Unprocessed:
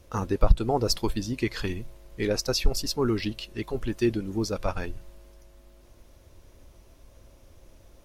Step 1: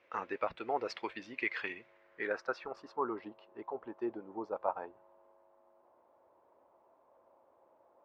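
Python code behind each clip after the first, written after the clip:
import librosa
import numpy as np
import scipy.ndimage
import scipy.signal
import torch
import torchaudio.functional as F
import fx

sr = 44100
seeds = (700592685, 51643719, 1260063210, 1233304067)

y = scipy.signal.medfilt(x, 3)
y = scipy.signal.sosfilt(scipy.signal.butter(2, 500.0, 'highpass', fs=sr, output='sos'), y)
y = fx.filter_sweep_lowpass(y, sr, from_hz=2200.0, to_hz=910.0, start_s=1.78, end_s=3.25, q=2.9)
y = F.gain(torch.from_numpy(y), -6.5).numpy()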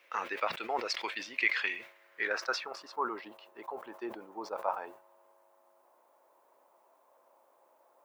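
y = scipy.signal.sosfilt(scipy.signal.butter(2, 95.0, 'highpass', fs=sr, output='sos'), x)
y = fx.tilt_eq(y, sr, slope=4.0)
y = fx.sustainer(y, sr, db_per_s=120.0)
y = F.gain(torch.from_numpy(y), 2.5).numpy()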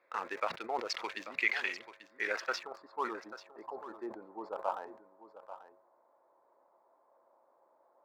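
y = fx.wiener(x, sr, points=15)
y = fx.hum_notches(y, sr, base_hz=60, count=2)
y = y + 10.0 ** (-13.5 / 20.0) * np.pad(y, (int(838 * sr / 1000.0), 0))[:len(y)]
y = F.gain(torch.from_numpy(y), -1.5).numpy()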